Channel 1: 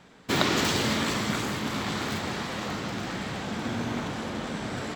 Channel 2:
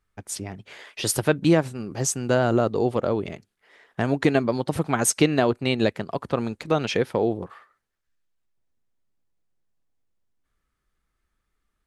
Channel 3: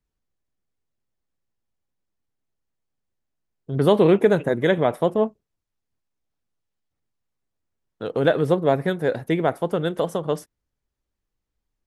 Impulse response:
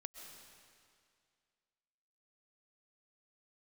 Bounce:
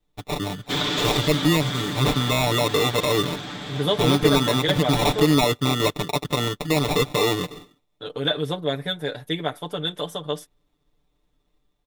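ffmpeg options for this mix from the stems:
-filter_complex "[0:a]adelay=400,volume=-8dB[a];[1:a]acrusher=samples=28:mix=1:aa=0.000001,volume=0dB[b];[2:a]tiltshelf=f=1.5k:g=-4.5,deesser=0.65,volume=-5.5dB[c];[a][b]amix=inputs=2:normalize=0,dynaudnorm=f=120:g=5:m=4dB,alimiter=limit=-14.5dB:level=0:latency=1:release=28,volume=0dB[d];[c][d]amix=inputs=2:normalize=0,equalizer=f=3.5k:w=6.2:g=12.5,aecho=1:1:6.8:0.88"

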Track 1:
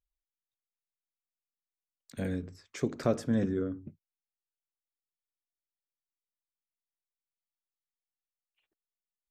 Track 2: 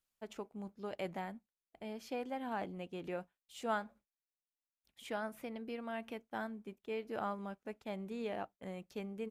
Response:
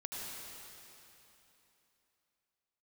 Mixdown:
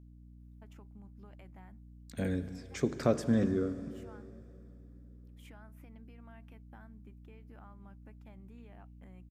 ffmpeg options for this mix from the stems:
-filter_complex "[0:a]aeval=exprs='val(0)+0.00224*(sin(2*PI*60*n/s)+sin(2*PI*2*60*n/s)/2+sin(2*PI*3*60*n/s)/3+sin(2*PI*4*60*n/s)/4+sin(2*PI*5*60*n/s)/5)':c=same,volume=-1dB,asplit=3[a][b][c];[b]volume=-11dB[d];[1:a]acompressor=threshold=-48dB:ratio=10,equalizer=f=500:t=o:w=1:g=-9,equalizer=f=4k:t=o:w=1:g=-9,equalizer=f=8k:t=o:w=1:g=-5,adelay=400,volume=-1.5dB[e];[c]apad=whole_len=427786[f];[e][f]sidechaincompress=threshold=-50dB:ratio=8:attack=16:release=188[g];[2:a]atrim=start_sample=2205[h];[d][h]afir=irnorm=-1:irlink=0[i];[a][g][i]amix=inputs=3:normalize=0"

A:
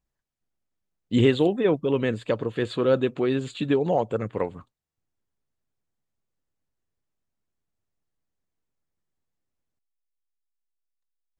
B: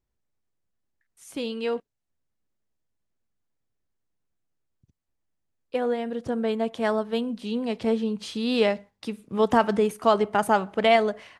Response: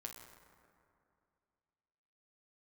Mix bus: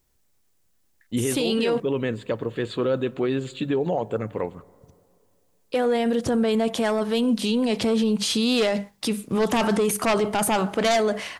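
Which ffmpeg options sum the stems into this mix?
-filter_complex "[0:a]agate=range=-33dB:threshold=-36dB:ratio=3:detection=peak,dynaudnorm=f=240:g=11:m=5.5dB,volume=-5.5dB,asplit=2[a][b];[b]volume=-13.5dB[c];[1:a]highshelf=f=4.5k:g=10.5,aeval=exprs='0.473*sin(PI/2*2.51*val(0)/0.473)':c=same,volume=-0.5dB[d];[2:a]atrim=start_sample=2205[e];[c][e]afir=irnorm=-1:irlink=0[f];[a][d][f]amix=inputs=3:normalize=0,bandreject=f=50:t=h:w=6,bandreject=f=100:t=h:w=6,bandreject=f=150:t=h:w=6,bandreject=f=200:t=h:w=6,alimiter=limit=-15.5dB:level=0:latency=1:release=14"

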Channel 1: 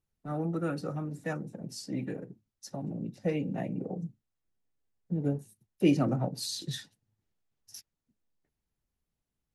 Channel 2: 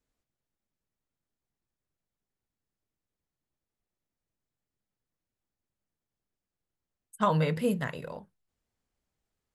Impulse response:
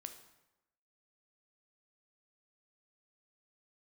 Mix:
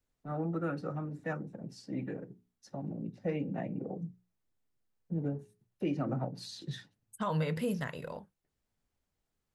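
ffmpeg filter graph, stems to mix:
-filter_complex "[0:a]aemphasis=mode=reproduction:type=75fm,bandreject=f=60:t=h:w=6,bandreject=f=120:t=h:w=6,bandreject=f=180:t=h:w=6,bandreject=f=240:t=h:w=6,bandreject=f=300:t=h:w=6,bandreject=f=360:t=h:w=6,bandreject=f=420:t=h:w=6,adynamicequalizer=threshold=0.00501:dfrequency=1500:dqfactor=0.89:tfrequency=1500:tqfactor=0.89:attack=5:release=100:ratio=0.375:range=2:mode=boostabove:tftype=bell,volume=-3dB[a];[1:a]volume=-1.5dB[b];[a][b]amix=inputs=2:normalize=0,alimiter=limit=-24dB:level=0:latency=1:release=149"

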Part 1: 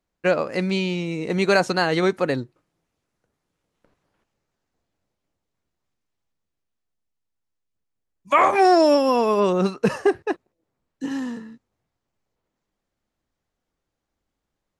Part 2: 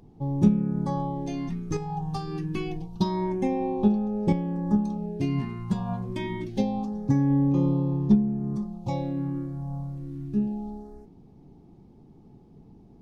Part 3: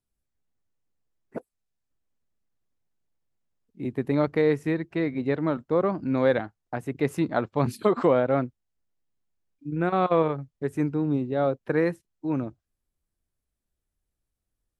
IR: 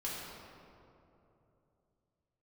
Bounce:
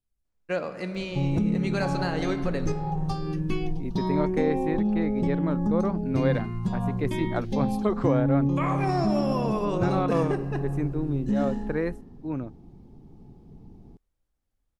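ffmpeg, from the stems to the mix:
-filter_complex "[0:a]adelay=250,volume=-11dB,asplit=2[a][b];[b]volume=-9.5dB[c];[1:a]adelay=950,volume=0.5dB[d];[2:a]volume=-5dB[e];[a][d]amix=inputs=2:normalize=0,alimiter=limit=-19dB:level=0:latency=1:release=77,volume=0dB[f];[3:a]atrim=start_sample=2205[g];[c][g]afir=irnorm=-1:irlink=0[h];[e][f][h]amix=inputs=3:normalize=0,lowshelf=f=77:g=10.5"

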